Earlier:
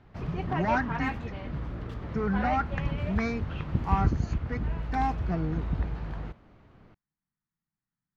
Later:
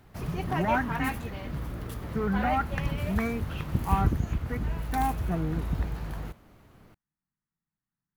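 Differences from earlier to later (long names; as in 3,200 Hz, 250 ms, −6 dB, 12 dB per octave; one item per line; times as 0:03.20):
speech: add moving average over 9 samples
master: remove high-frequency loss of the air 180 metres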